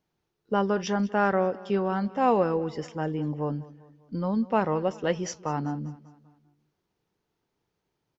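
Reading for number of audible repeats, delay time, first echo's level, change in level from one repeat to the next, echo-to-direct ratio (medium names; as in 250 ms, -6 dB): 3, 197 ms, -20.0 dB, -6.0 dB, -19.0 dB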